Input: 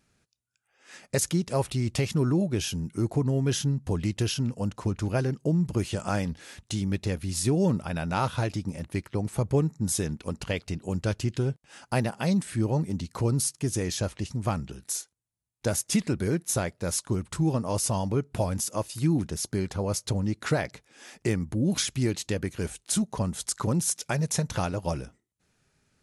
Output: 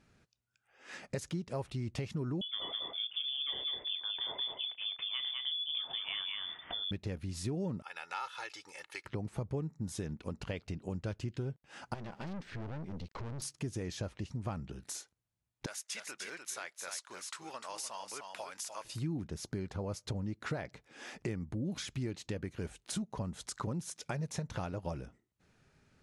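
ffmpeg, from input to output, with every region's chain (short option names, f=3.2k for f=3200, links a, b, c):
-filter_complex "[0:a]asettb=1/sr,asplit=3[a][b][c];[a]atrim=end=2.414[d];[b]atrim=start=2.41:end=6.91,asetpts=PTS-STARTPTS,afade=t=in:d=0.004:c=qsin,afade=t=out:st=4.496:d=0.004:c=qsin,asplit=2[e][f];[f]adelay=32,volume=-14dB[g];[e][g]amix=inputs=2:normalize=0,atrim=end_sample=198450,aecho=1:1:205:0.668,atrim=end_sample=198450,lowpass=f=3.1k:t=q:w=0.5098,lowpass=f=3.1k:t=q:w=0.6013,lowpass=f=3.1k:t=q:w=0.9,lowpass=f=3.1k:t=q:w=2.563,afreqshift=-3600[h];[c]atrim=start=6.906[i];[d][h]acrossfade=d=0.004:c1=hsin:c2=qsin[j];[j][i]acrossfade=d=0.004:c1=qsin:c2=hsin,asettb=1/sr,asplit=3[k][l][m];[k]atrim=end=7.824[n];[l]atrim=start=7.82:end=9.05,asetpts=PTS-STARTPTS,afade=t=in:d=0.004:c=qsin,afade=t=out:st=1.226:d=0.004:c=qsin,highpass=1.3k,aecho=1:1:2.3:0.73,atrim=end_sample=54243[o];[m]atrim=start=9.046[p];[n][o]acrossfade=d=0.004:c1=hsin:c2=qsin[q];[q][p]acrossfade=d=0.004:c1=qsin:c2=hsin,asettb=1/sr,asplit=3[r][s][t];[r]atrim=end=11.944[u];[s]atrim=start=11.94:end=13.42,asetpts=PTS-STARTPTS,afade=t=in:d=0.004:c=qsin,afade=t=out:st=1.476:d=0.004:c=qsin,lowpass=f=5.5k:w=0.5412,lowpass=f=5.5k:w=1.3066,aeval=exprs='(tanh(63.1*val(0)+0.65)-tanh(0.65))/63.1':c=same,aeval=exprs='val(0)*gte(abs(val(0)),0.00112)':c=same[v];[t]atrim=start=13.416[w];[u][v]acrossfade=d=0.004:c1=hsin:c2=qsin[x];[x][w]acrossfade=d=0.004:c1=qsin:c2=hsin,asettb=1/sr,asplit=3[y][z][aa];[y]atrim=end=15.664[ab];[z]atrim=start=15.66:end=18.85,asetpts=PTS-STARTPTS,afade=t=in:d=0.004:c=qsin,afade=t=out:st=3.186:d=0.004:c=qsin,highpass=1.4k,aecho=1:1:299:0.398,atrim=end_sample=140679[ac];[aa]atrim=start=18.846[ad];[ab][ac]acrossfade=d=0.004:c1=hsin:c2=qsin[ae];[ae][ad]acrossfade=d=0.004:c1=qsin:c2=hsin,aemphasis=mode=reproduction:type=50fm,acompressor=threshold=-44dB:ratio=2.5,volume=2.5dB"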